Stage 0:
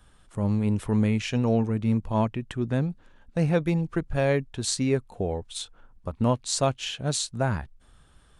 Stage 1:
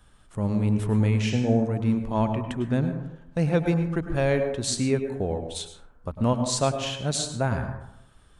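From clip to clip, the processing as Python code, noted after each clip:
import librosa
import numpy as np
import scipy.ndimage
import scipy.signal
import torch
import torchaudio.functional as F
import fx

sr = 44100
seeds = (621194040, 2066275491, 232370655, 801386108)

y = fx.spec_repair(x, sr, seeds[0], start_s=1.3, length_s=0.3, low_hz=900.0, high_hz=8200.0, source='both')
y = fx.rev_plate(y, sr, seeds[1], rt60_s=0.84, hf_ratio=0.3, predelay_ms=90, drr_db=7.0)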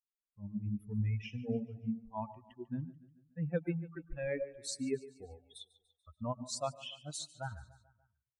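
y = fx.bin_expand(x, sr, power=3.0)
y = fx.echo_feedback(y, sr, ms=145, feedback_pct=54, wet_db=-19)
y = y * 10.0 ** (-8.0 / 20.0)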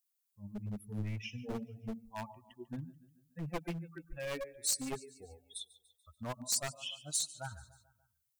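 y = np.minimum(x, 2.0 * 10.0 ** (-34.5 / 20.0) - x)
y = librosa.effects.preemphasis(y, coef=0.8, zi=[0.0])
y = y * 10.0 ** (11.0 / 20.0)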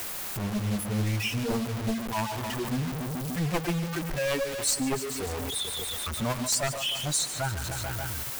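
y = x + 0.5 * 10.0 ** (-37.0 / 20.0) * np.sign(x)
y = fx.quant_dither(y, sr, seeds[2], bits=8, dither='none')
y = fx.band_squash(y, sr, depth_pct=40)
y = y * 10.0 ** (8.0 / 20.0)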